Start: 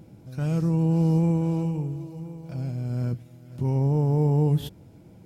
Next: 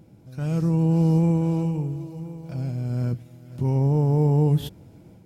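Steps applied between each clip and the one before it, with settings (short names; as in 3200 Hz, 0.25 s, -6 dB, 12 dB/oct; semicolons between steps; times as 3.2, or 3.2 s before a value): AGC gain up to 5 dB; gain -3 dB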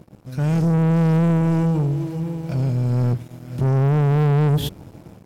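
sample leveller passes 3; gain -2 dB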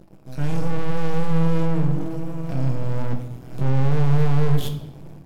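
half-wave rectifier; shoebox room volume 320 m³, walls mixed, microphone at 0.66 m; gain -1 dB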